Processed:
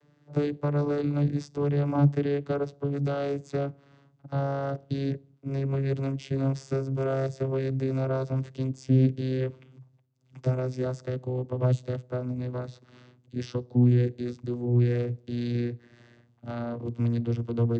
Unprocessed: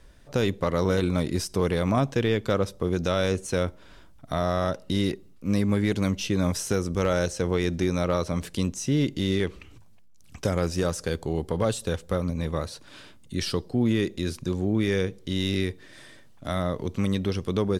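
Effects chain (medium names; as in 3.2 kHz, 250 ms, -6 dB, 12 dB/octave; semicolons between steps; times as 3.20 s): vocoder on a note that slides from D3, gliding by -4 st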